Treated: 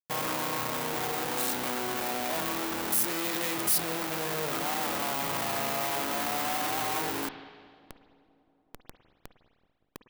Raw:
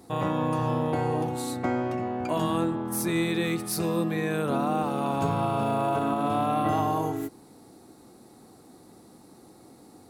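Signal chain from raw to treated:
0:03.54–0:04.72: comb filter 6.6 ms, depth 84%
comparator with hysteresis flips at −41 dBFS
RIAA equalisation recording
delay with a low-pass on its return 190 ms, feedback 75%, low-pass 530 Hz, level −22 dB
spring reverb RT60 1.7 s, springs 51/55 ms, chirp 20 ms, DRR 13.5 dB
soft clipping −19.5 dBFS, distortion −5 dB

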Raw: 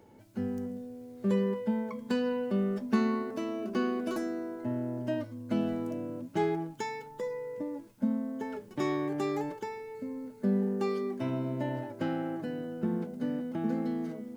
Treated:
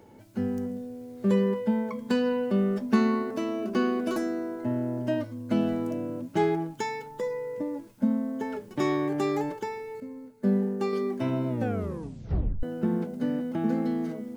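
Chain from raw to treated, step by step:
0:10.00–0:10.93: expander for the loud parts 1.5 to 1, over −46 dBFS
0:11.48: tape stop 1.15 s
level +4.5 dB

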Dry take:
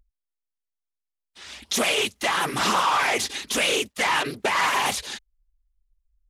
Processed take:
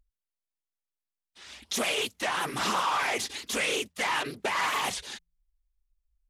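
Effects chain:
hum removal 82.94 Hz, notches 2
wow of a warped record 45 rpm, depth 160 cents
level −6 dB

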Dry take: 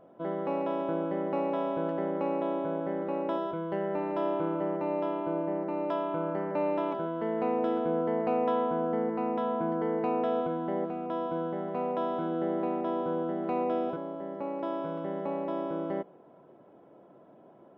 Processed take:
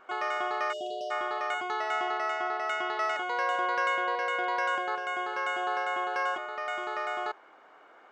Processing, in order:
change of speed 2.19×
time-frequency box erased 0:00.73–0:01.11, 770–2,600 Hz

